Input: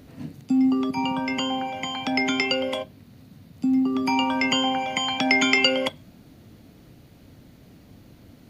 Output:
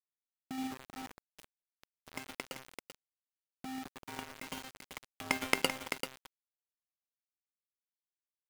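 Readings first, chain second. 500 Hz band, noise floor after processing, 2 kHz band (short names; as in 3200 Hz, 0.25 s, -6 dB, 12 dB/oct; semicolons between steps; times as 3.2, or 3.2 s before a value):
-17.0 dB, under -85 dBFS, -15.5 dB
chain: power-law curve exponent 3; bell 5500 Hz -10.5 dB 2 oct; echo 0.388 s -8 dB; requantised 8-bit, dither none; gain +5 dB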